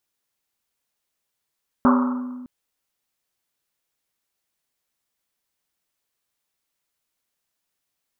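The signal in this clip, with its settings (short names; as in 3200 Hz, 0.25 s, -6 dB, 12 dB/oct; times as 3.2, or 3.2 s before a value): Risset drum length 0.61 s, pitch 250 Hz, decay 1.69 s, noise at 1100 Hz, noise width 530 Hz, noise 30%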